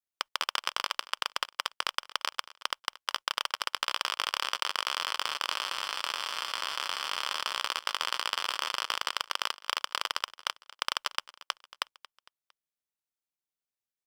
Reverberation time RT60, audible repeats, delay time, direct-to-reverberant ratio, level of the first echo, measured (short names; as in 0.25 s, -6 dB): none, 3, 0.228 s, none, -19.0 dB